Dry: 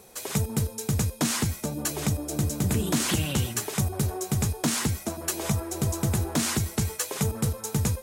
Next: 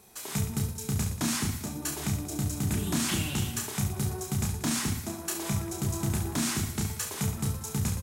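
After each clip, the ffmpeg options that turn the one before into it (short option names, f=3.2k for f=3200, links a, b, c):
-af "equalizer=f=510:t=o:w=0.44:g=-11,aecho=1:1:30|69|119.7|185.6|271.3:0.631|0.398|0.251|0.158|0.1,volume=-5dB"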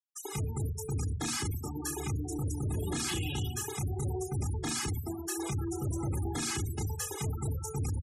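-af "aecho=1:1:2.4:0.67,asoftclip=type=hard:threshold=-29dB,afftfilt=real='re*gte(hypot(re,im),0.0224)':imag='im*gte(hypot(re,im),0.0224)':win_size=1024:overlap=0.75"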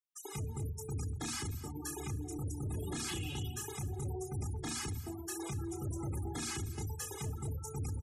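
-af "aecho=1:1:242:0.141,volume=-5.5dB"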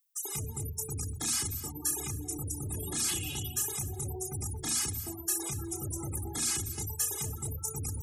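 -af "aemphasis=mode=production:type=75kf,areverse,acompressor=mode=upward:threshold=-34dB:ratio=2.5,areverse"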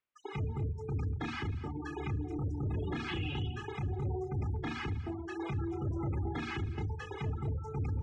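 -af "lowpass=f=2.6k:w=0.5412,lowpass=f=2.6k:w=1.3066,volume=3.5dB"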